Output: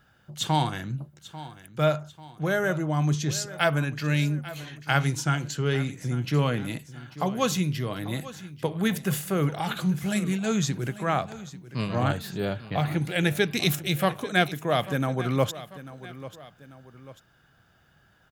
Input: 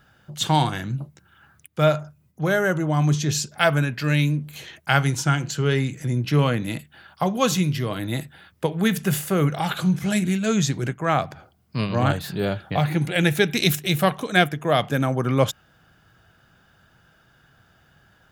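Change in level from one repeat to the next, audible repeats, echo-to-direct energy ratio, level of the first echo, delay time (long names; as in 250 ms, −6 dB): −6.5 dB, 2, −15.0 dB, −16.0 dB, 842 ms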